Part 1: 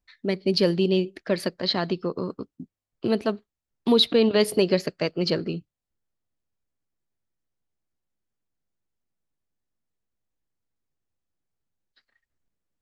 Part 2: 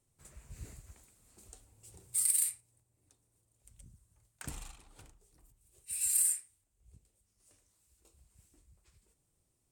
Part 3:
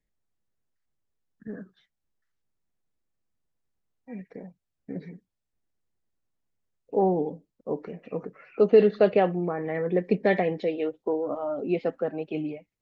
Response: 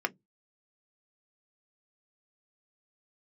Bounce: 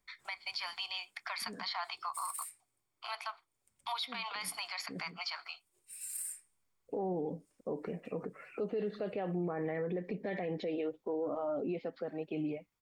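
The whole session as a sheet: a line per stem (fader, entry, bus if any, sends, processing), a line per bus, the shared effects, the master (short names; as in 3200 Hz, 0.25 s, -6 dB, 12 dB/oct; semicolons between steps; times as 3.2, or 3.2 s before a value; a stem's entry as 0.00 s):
+0.5 dB, 0.00 s, bus A, send -11 dB, Chebyshev high-pass 690 Hz, order 6; comb 0.9 ms, depth 56%
-14.0 dB, 0.00 s, bus A, send -5 dB, HPF 130 Hz 12 dB/oct
-1.0 dB, 0.00 s, no bus, no send, compressor, threshold -24 dBFS, peak gain reduction 11.5 dB; auto duck -8 dB, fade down 0.40 s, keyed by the first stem
bus A: 0.0 dB, compressor 2:1, threshold -40 dBFS, peak gain reduction 12.5 dB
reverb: on, RT60 0.15 s, pre-delay 3 ms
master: limiter -28.5 dBFS, peak gain reduction 13.5 dB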